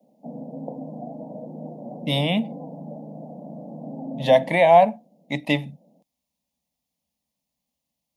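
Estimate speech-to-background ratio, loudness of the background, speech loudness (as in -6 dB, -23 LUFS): 16.5 dB, -36.5 LUFS, -20.0 LUFS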